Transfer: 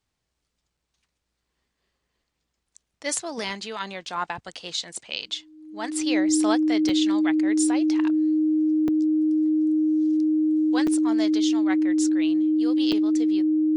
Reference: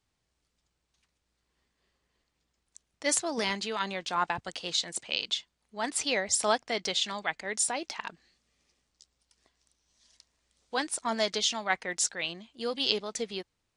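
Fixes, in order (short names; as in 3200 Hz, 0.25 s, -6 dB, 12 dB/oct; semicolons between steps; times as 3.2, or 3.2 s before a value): notch 310 Hz, Q 30; interpolate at 0.77/2.77/6.89/8.88/10.87/12.92, 3.8 ms; gain 0 dB, from 10.97 s +4 dB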